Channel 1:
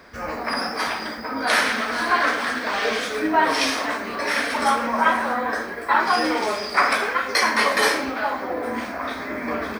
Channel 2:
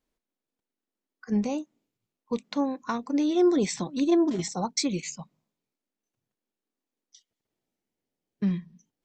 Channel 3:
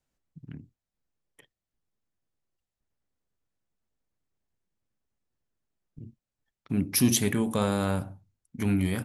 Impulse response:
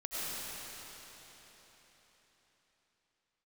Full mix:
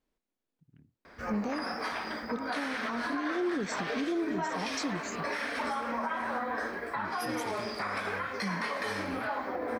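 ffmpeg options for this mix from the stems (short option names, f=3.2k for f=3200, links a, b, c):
-filter_complex "[0:a]adelay=1050,volume=-5.5dB[a];[1:a]volume=0.5dB[b];[2:a]adelay=250,volume=-17.5dB[c];[a][b]amix=inputs=2:normalize=0,highshelf=f=5.4k:g=-8.5,alimiter=limit=-21.5dB:level=0:latency=1:release=312,volume=0dB[d];[c][d]amix=inputs=2:normalize=0,alimiter=limit=-24dB:level=0:latency=1:release=81"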